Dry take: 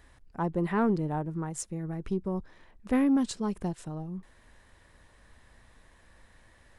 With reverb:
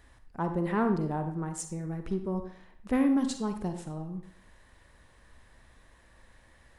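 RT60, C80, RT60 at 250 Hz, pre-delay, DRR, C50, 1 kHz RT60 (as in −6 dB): 0.60 s, 11.5 dB, 0.65 s, 38 ms, 7.0 dB, 8.0 dB, 0.60 s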